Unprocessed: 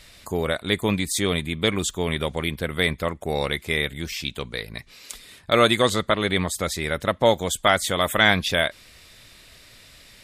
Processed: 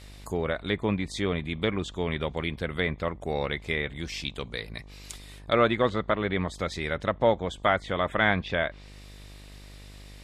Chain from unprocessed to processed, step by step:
hum with harmonics 50 Hz, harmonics 24, −43 dBFS −7 dB per octave
treble cut that deepens with the level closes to 2,100 Hz, closed at −18.5 dBFS
level −4 dB

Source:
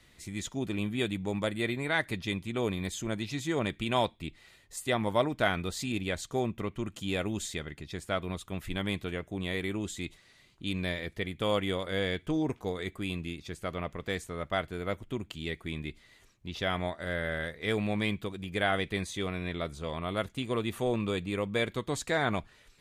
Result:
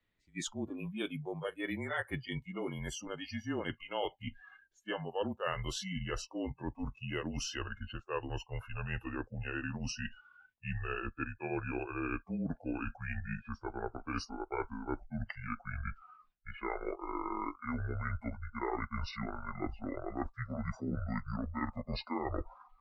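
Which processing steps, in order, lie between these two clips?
pitch glide at a constant tempo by −10.5 semitones starting unshifted
low-pass that shuts in the quiet parts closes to 3,000 Hz, open at −28 dBFS
reversed playback
downward compressor 4 to 1, threshold −42 dBFS, peak gain reduction 17 dB
reversed playback
frequency shifter −31 Hz
noise reduction from a noise print of the clip's start 27 dB
level +7.5 dB

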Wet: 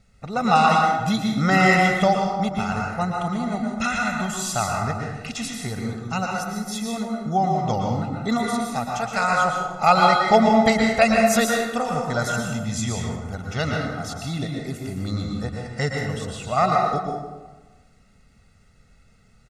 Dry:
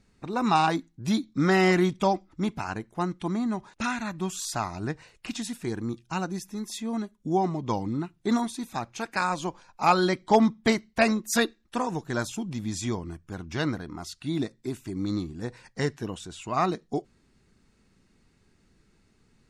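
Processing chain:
comb filter 1.5 ms, depth 83%
dense smooth reverb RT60 1.2 s, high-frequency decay 0.55×, pre-delay 105 ms, DRR −0.5 dB
level +2 dB

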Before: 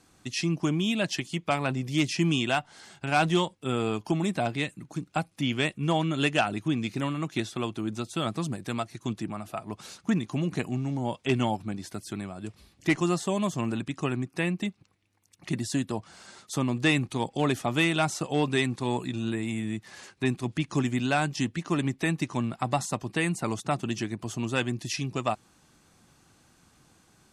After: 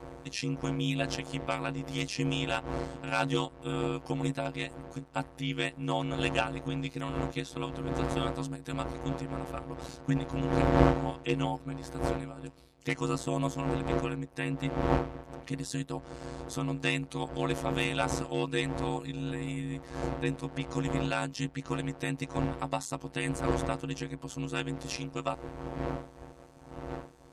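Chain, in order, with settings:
wind on the microphone 550 Hz −32 dBFS
phases set to zero 207 Hz
ring modulation 62 Hz

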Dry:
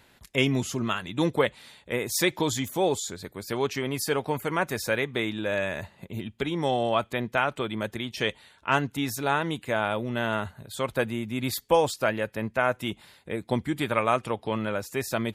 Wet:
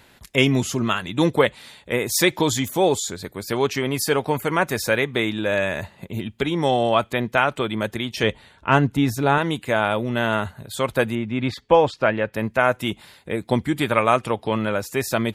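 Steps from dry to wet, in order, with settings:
0:08.23–0:09.38: spectral tilt −2 dB per octave
0:11.15–0:12.34: low-pass filter 3,000 Hz 12 dB per octave
level +6 dB

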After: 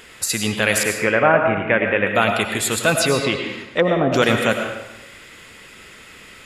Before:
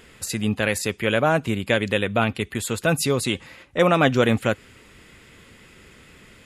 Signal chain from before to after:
0:00.83–0:02.07: Butterworth low-pass 2,400 Hz 36 dB per octave
0:02.98–0:04.12: treble cut that deepens with the level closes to 500 Hz, closed at −13.5 dBFS
low-shelf EQ 420 Hz −10.5 dB
in parallel at +0.5 dB: brickwall limiter −13 dBFS, peak gain reduction 5.5 dB
on the sum: convolution reverb RT60 1.0 s, pre-delay 60 ms, DRR 4 dB
level +1.5 dB

